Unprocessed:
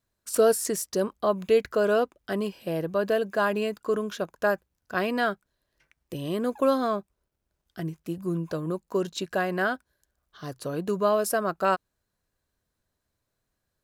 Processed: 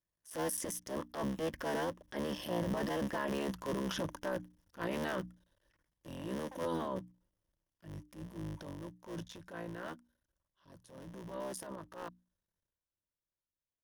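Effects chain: cycle switcher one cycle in 3, muted; Doppler pass-by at 3.33, 24 m/s, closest 5 m; compressor 12:1, threshold -41 dBFS, peak gain reduction 18.5 dB; ripple EQ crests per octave 1.2, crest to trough 7 dB; transient shaper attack -9 dB, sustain +9 dB; low shelf 360 Hz +3 dB; notches 60/120/180/240/300 Hz; limiter -39 dBFS, peak gain reduction 9.5 dB; gain +12 dB

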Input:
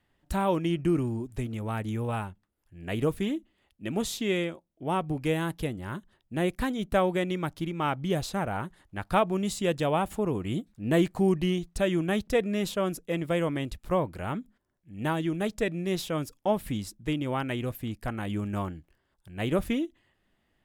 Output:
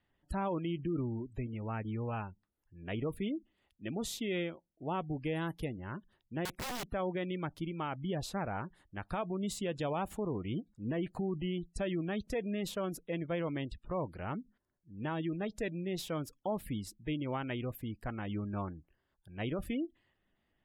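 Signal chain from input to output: spectral gate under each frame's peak -30 dB strong; limiter -21 dBFS, peak gain reduction 9.5 dB; 6.45–6.89 wrapped overs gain 28.5 dB; gain -6 dB

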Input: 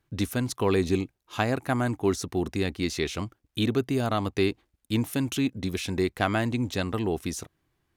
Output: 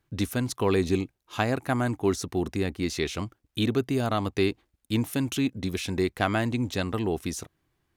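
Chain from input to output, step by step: 2.45–2.87 dynamic EQ 3900 Hz, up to -5 dB, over -46 dBFS, Q 0.84

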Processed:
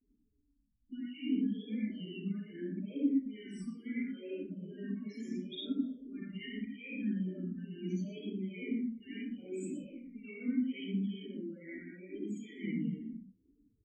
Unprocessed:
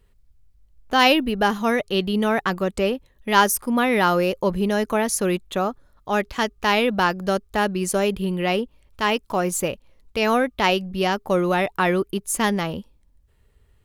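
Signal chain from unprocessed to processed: low-pass opened by the level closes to 1500 Hz, open at -17 dBFS; high shelf 7800 Hz -8 dB; negative-ratio compressor -31 dBFS, ratio -1; vowel filter i; loudest bins only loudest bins 8; digital reverb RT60 0.75 s, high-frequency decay 0.6×, pre-delay 25 ms, DRR -9 dB; vibrato 0.75 Hz 98 cents; on a send: echo 0.12 s -11 dB; on the sum: endless phaser -2.3 Hz

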